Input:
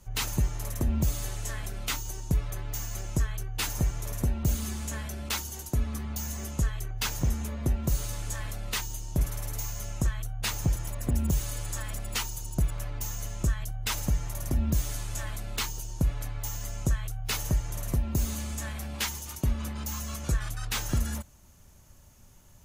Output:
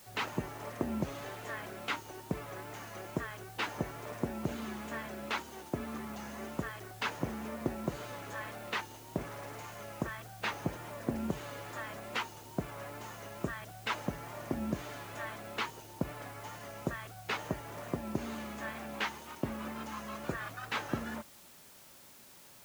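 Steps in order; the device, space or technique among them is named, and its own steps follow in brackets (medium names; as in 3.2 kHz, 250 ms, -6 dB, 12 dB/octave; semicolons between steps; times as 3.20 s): wax cylinder (band-pass 270–2100 Hz; wow and flutter; white noise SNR 17 dB); trim +2.5 dB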